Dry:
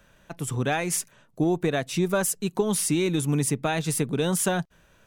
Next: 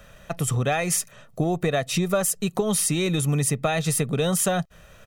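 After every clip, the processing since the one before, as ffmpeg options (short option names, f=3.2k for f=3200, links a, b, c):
-af "aecho=1:1:1.6:0.5,acompressor=threshold=-31dB:ratio=2.5,volume=8dB"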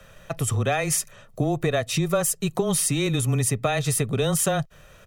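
-af "afreqshift=-15"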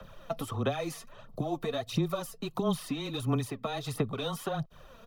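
-filter_complex "[0:a]acrossover=split=240|770|3100[a][b][c][d];[a]acompressor=threshold=-36dB:ratio=4[e];[b]acompressor=threshold=-36dB:ratio=4[f];[c]acompressor=threshold=-38dB:ratio=4[g];[d]acompressor=threshold=-36dB:ratio=4[h];[e][f][g][h]amix=inputs=4:normalize=0,aphaser=in_gain=1:out_gain=1:delay=4.5:decay=0.59:speed=1.5:type=sinusoidal,equalizer=f=250:t=o:w=1:g=6,equalizer=f=1k:t=o:w=1:g=8,equalizer=f=2k:t=o:w=1:g=-7,equalizer=f=4k:t=o:w=1:g=5,equalizer=f=8k:t=o:w=1:g=-11,volume=-6dB"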